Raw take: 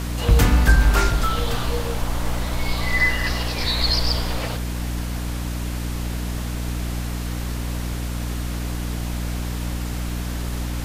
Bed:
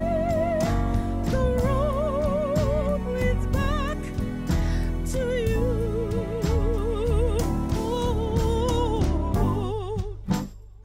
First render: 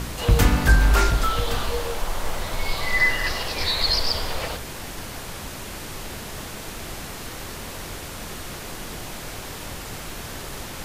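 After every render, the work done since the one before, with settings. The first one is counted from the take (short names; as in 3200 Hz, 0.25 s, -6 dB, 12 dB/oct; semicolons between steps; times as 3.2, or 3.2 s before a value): de-hum 60 Hz, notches 5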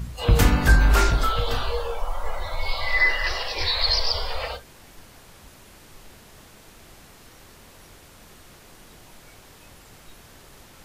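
noise print and reduce 14 dB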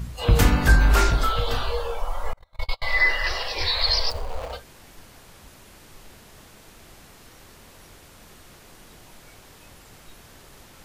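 2.33–2.82 gate -23 dBFS, range -37 dB; 4.1–4.53 median filter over 25 samples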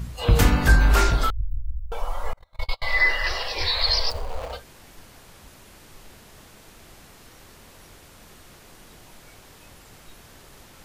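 1.3–1.92 inverse Chebyshev band-stop 490–7200 Hz, stop band 80 dB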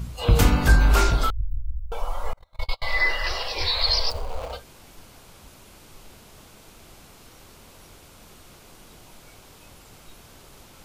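bell 1800 Hz -6 dB 0.29 oct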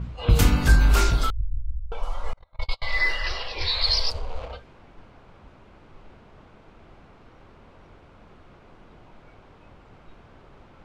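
dynamic EQ 710 Hz, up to -5 dB, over -39 dBFS, Q 0.72; low-pass opened by the level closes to 1700 Hz, open at -15.5 dBFS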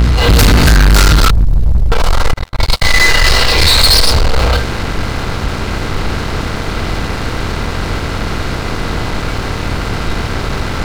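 per-bin compression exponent 0.6; sample leveller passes 5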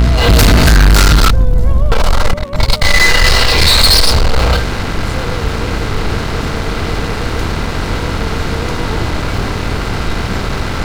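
add bed -1 dB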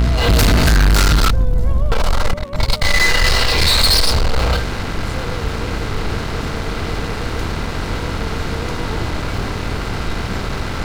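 gain -5 dB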